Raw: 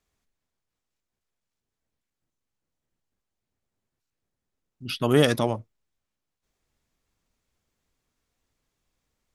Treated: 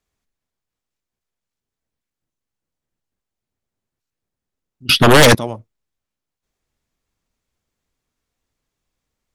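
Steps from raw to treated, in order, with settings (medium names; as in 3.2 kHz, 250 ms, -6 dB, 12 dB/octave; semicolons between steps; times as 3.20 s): 4.89–5.35 s: sine folder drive 16 dB, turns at -4 dBFS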